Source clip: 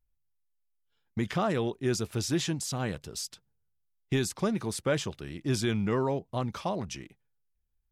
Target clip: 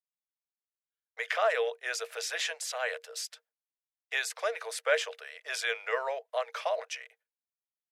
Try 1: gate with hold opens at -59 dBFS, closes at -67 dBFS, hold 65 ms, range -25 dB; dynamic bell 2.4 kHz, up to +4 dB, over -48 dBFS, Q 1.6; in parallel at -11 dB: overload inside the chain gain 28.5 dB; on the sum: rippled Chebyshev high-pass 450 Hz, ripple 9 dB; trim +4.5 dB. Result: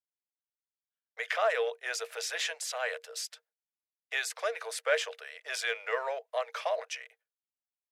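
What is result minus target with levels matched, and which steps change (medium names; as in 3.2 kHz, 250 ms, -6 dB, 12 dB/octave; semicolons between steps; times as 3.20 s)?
overload inside the chain: distortion +31 dB
change: overload inside the chain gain 18 dB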